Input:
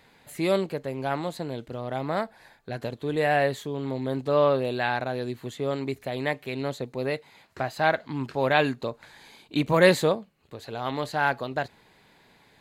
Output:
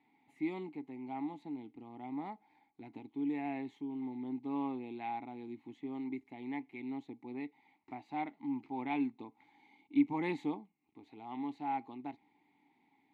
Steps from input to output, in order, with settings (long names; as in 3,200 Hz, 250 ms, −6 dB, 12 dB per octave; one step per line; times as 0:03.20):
formant filter u
wrong playback speed 25 fps video run at 24 fps
level −1 dB